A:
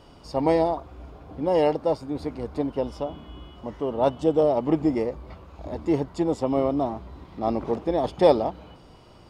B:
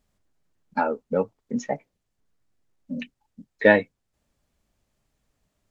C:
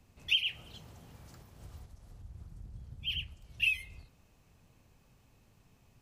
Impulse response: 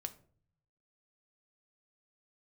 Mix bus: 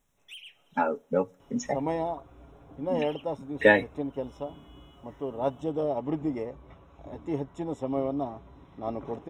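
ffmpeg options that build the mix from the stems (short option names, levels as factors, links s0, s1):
-filter_complex "[0:a]adelay=1400,volume=0.398[s0];[1:a]highshelf=f=5800:g=11.5,volume=0.631,asplit=2[s1][s2];[s2]volume=0.168[s3];[2:a]highpass=390,equalizer=f=2700:t=o:w=0.77:g=-3,asoftclip=type=hard:threshold=0.0282,volume=0.316[s4];[3:a]atrim=start_sample=2205[s5];[s3][s5]afir=irnorm=-1:irlink=0[s6];[s0][s1][s4][s6]amix=inputs=4:normalize=0,asuperstop=centerf=4600:order=20:qfactor=3.8,highshelf=f=5800:g=-4.5,aecho=1:1:7.2:0.35"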